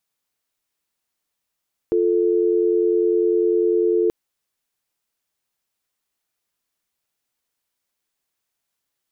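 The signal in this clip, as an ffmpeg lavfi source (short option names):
-f lavfi -i "aevalsrc='0.126*(sin(2*PI*350*t)+sin(2*PI*440*t))':d=2.18:s=44100"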